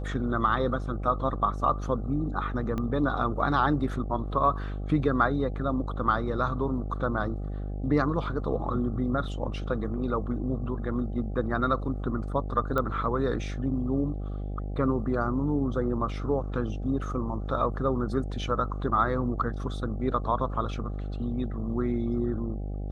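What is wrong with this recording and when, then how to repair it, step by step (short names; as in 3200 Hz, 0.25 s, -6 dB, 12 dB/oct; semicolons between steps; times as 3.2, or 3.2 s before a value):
buzz 50 Hz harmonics 16 -33 dBFS
2.78 pop -20 dBFS
12.78 pop -16 dBFS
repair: de-click; de-hum 50 Hz, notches 16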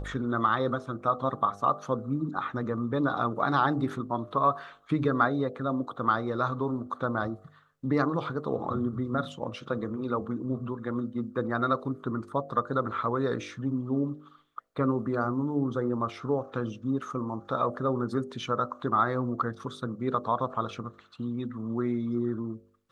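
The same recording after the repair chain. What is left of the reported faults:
2.78 pop
12.78 pop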